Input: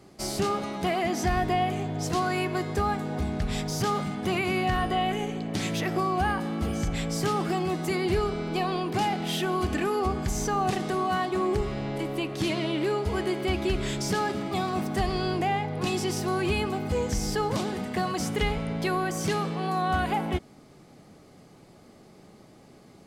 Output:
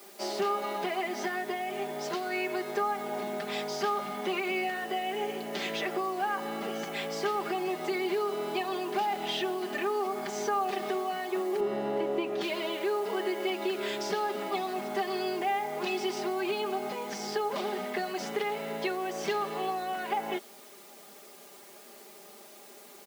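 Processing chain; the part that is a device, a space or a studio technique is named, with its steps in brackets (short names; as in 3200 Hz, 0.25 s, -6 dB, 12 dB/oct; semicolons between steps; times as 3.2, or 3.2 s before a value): baby monitor (BPF 330–3900 Hz; compressor, threshold -30 dBFS, peak gain reduction 8 dB; white noise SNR 21 dB); HPF 260 Hz 12 dB/oct; 11.6–12.41 tilt -3 dB/oct; comb 5 ms, depth 85%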